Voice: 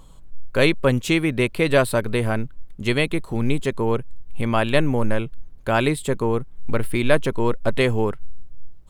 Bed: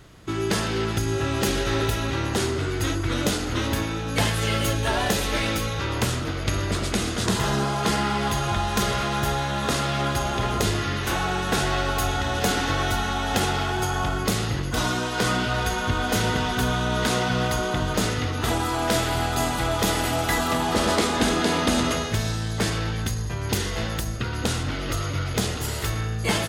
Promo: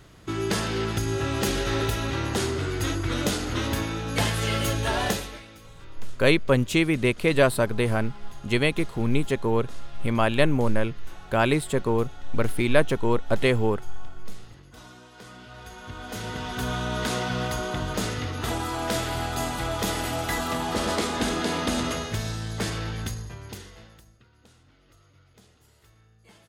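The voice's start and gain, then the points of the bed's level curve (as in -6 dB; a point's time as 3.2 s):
5.65 s, -2.0 dB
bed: 5.1 s -2 dB
5.47 s -22.5 dB
15.31 s -22.5 dB
16.74 s -4.5 dB
23.08 s -4.5 dB
24.29 s -31.5 dB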